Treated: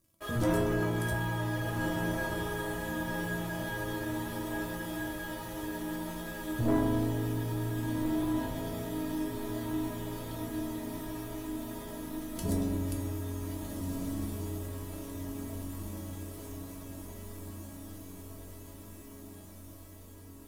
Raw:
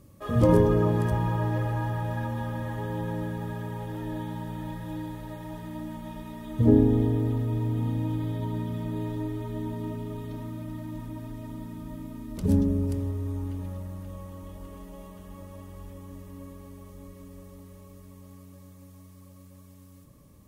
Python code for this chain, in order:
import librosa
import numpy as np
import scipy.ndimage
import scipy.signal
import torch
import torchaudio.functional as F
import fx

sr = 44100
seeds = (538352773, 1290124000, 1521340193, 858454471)

y = fx.high_shelf(x, sr, hz=3600.0, db=11.5)
y = fx.leveller(y, sr, passes=3)
y = fx.comb_fb(y, sr, f0_hz=330.0, decay_s=0.34, harmonics='all', damping=0.0, mix_pct=90)
y = fx.echo_diffused(y, sr, ms=1557, feedback_pct=65, wet_db=-4.0)